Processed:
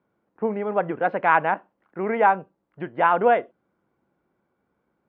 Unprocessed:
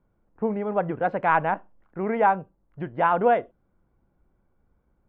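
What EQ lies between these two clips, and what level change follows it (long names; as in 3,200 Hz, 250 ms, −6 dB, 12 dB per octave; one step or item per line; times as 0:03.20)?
band-pass filter 180–2,700 Hz
parametric band 370 Hz +2 dB
high-shelf EQ 2,000 Hz +11.5 dB
0.0 dB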